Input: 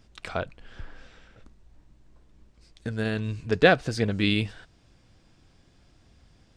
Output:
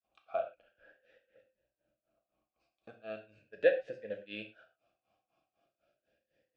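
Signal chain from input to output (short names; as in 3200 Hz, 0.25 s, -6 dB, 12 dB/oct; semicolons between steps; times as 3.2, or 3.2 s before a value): grains 0.243 s, grains 4/s, spray 21 ms, pitch spread up and down by 0 st; non-linear reverb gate 0.14 s falling, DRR 4 dB; vowel sweep a-e 0.38 Hz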